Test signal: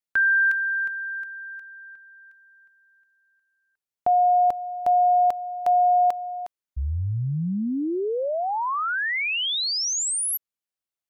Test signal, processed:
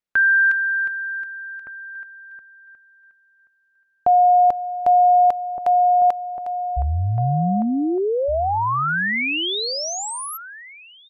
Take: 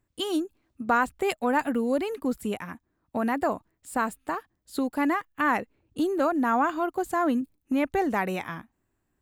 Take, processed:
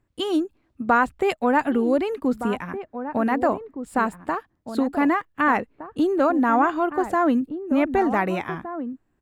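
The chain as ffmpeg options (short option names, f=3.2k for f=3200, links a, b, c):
-filter_complex "[0:a]lowpass=f=2.8k:p=1,asplit=2[a][b];[b]adelay=1516,volume=-10dB,highshelf=f=4k:g=-34.1[c];[a][c]amix=inputs=2:normalize=0,volume=5dB"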